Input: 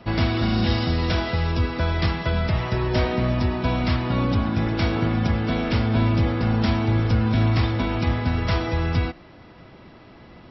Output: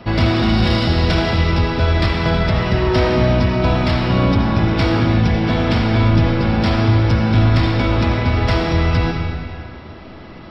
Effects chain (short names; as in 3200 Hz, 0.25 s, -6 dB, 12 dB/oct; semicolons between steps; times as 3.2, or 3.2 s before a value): in parallel at -4 dB: soft clip -25.5 dBFS, distortion -8 dB; 5.05–5.45 on the sum: Butterworth band-stop 1300 Hz, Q 3.7; digital reverb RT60 2.2 s, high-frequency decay 0.85×, pre-delay 30 ms, DRR 2 dB; gain +3 dB